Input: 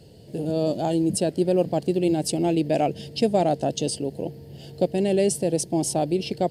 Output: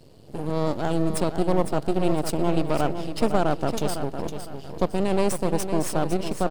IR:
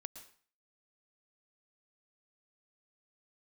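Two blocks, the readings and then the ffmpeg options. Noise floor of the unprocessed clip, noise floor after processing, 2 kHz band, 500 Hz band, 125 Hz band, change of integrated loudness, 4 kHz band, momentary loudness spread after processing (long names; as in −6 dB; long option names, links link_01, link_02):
−45 dBFS, −43 dBFS, +4.0 dB, −2.5 dB, 0.0 dB, −2.0 dB, −3.0 dB, 7 LU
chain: -filter_complex "[0:a]aeval=exprs='max(val(0),0)':channel_layout=same,aecho=1:1:507|1014|1521|2028:0.355|0.121|0.041|0.0139,asplit=2[link_01][link_02];[1:a]atrim=start_sample=2205,lowpass=2900[link_03];[link_02][link_03]afir=irnorm=-1:irlink=0,volume=-10dB[link_04];[link_01][link_04]amix=inputs=2:normalize=0"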